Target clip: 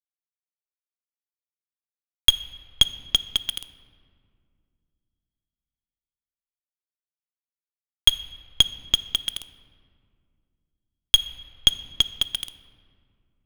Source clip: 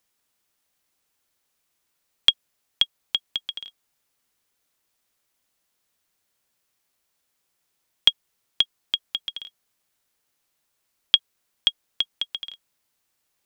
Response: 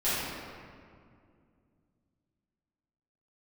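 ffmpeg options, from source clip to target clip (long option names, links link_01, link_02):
-filter_complex "[0:a]lowshelf=frequency=160:gain=-8,bandreject=frequency=290:width_type=h:width=4,bandreject=frequency=580:width_type=h:width=4,bandreject=frequency=870:width_type=h:width=4,bandreject=frequency=1160:width_type=h:width=4,bandreject=frequency=1450:width_type=h:width=4,bandreject=frequency=1740:width_type=h:width=4,bandreject=frequency=2030:width_type=h:width=4,bandreject=frequency=2320:width_type=h:width=4,bandreject=frequency=2610:width_type=h:width=4,bandreject=frequency=2900:width_type=h:width=4,bandreject=frequency=3190:width_type=h:width=4,bandreject=frequency=3480:width_type=h:width=4,bandreject=frequency=3770:width_type=h:width=4,bandreject=frequency=4060:width_type=h:width=4,bandreject=frequency=4350:width_type=h:width=4,bandreject=frequency=4640:width_type=h:width=4,bandreject=frequency=4930:width_type=h:width=4,bandreject=frequency=5220:width_type=h:width=4,bandreject=frequency=5510:width_type=h:width=4,bandreject=frequency=5800:width_type=h:width=4,bandreject=frequency=6090:width_type=h:width=4,bandreject=frequency=6380:width_type=h:width=4,bandreject=frequency=6670:width_type=h:width=4,bandreject=frequency=6960:width_type=h:width=4,bandreject=frequency=7250:width_type=h:width=4,bandreject=frequency=7540:width_type=h:width=4,bandreject=frequency=7830:width_type=h:width=4,bandreject=frequency=8120:width_type=h:width=4,bandreject=frequency=8410:width_type=h:width=4,bandreject=frequency=8700:width_type=h:width=4,bandreject=frequency=8990:width_type=h:width=4,bandreject=frequency=9280:width_type=h:width=4,aeval=exprs='0.944*(cos(1*acos(clip(val(0)/0.944,-1,1)))-cos(1*PI/2))+0.0299*(cos(3*acos(clip(val(0)/0.944,-1,1)))-cos(3*PI/2))+0.168*(cos(5*acos(clip(val(0)/0.944,-1,1)))-cos(5*PI/2))+0.119*(cos(6*acos(clip(val(0)/0.944,-1,1)))-cos(6*PI/2))+0.00596*(cos(7*acos(clip(val(0)/0.944,-1,1)))-cos(7*PI/2))':channel_layout=same,aeval=exprs='val(0)*gte(abs(val(0)),0.0794)':channel_layout=same,asplit=2[link_01][link_02];[1:a]atrim=start_sample=2205[link_03];[link_02][link_03]afir=irnorm=-1:irlink=0,volume=-25dB[link_04];[link_01][link_04]amix=inputs=2:normalize=0"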